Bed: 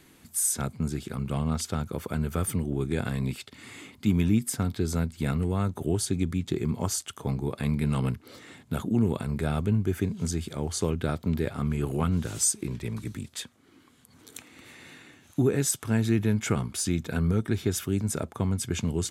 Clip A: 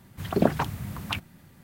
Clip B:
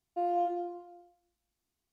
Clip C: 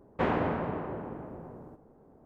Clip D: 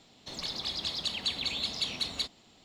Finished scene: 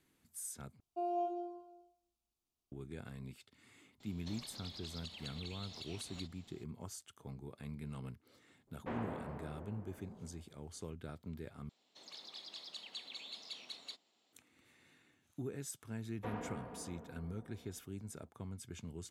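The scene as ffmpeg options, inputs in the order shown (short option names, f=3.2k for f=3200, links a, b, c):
-filter_complex "[4:a]asplit=2[a][b];[3:a]asplit=2[c][d];[0:a]volume=-19dB[e];[2:a]asuperstop=centerf=1800:order=8:qfactor=2.1[f];[a]acompressor=threshold=-46dB:ratio=5:attack=51:release=94:knee=1:detection=rms[g];[b]highpass=320[h];[d]aecho=1:1:4.2:0.65[i];[e]asplit=3[j][k][l];[j]atrim=end=0.804[m];[f]atrim=end=1.92,asetpts=PTS-STARTPTS,volume=-6.5dB[n];[k]atrim=start=2.716:end=11.694[o];[h]atrim=end=2.64,asetpts=PTS-STARTPTS,volume=-15.5dB[p];[l]atrim=start=14.326[q];[g]atrim=end=2.64,asetpts=PTS-STARTPTS,volume=-6dB,afade=t=in:d=0.004:c=hsin,afade=t=out:st=2.636:d=0.004:c=hsin,adelay=4000[r];[c]atrim=end=2.25,asetpts=PTS-STARTPTS,volume=-14.5dB,afade=t=in:d=0.004:c=hsin,afade=t=out:st=2.246:d=0.004:c=hsin,adelay=8670[s];[i]atrim=end=2.25,asetpts=PTS-STARTPTS,volume=-17.5dB,afade=t=in:d=0.004:c=hsin,afade=t=out:st=2.246:d=0.004:c=hsin,adelay=707364S[t];[m][n]acrossfade=d=0.004:c1=hsin:c2=hsin[u];[u][o]acrossfade=d=0.004:c1=hsin:c2=hsin[v];[v][p]acrossfade=d=0.004:c1=hsin:c2=hsin[w];[w][q]acrossfade=d=0.004:c1=hsin:c2=hsin[x];[x][r][s][t]amix=inputs=4:normalize=0"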